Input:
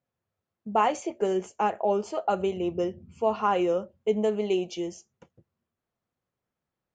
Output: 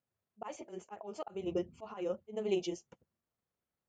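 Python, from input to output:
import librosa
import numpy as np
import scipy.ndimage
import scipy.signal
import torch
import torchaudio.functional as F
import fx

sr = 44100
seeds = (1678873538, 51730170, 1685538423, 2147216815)

y = fx.auto_swell(x, sr, attack_ms=441.0)
y = fx.stretch_grains(y, sr, factor=0.56, grain_ms=78.0)
y = F.gain(torch.from_numpy(y), -4.0).numpy()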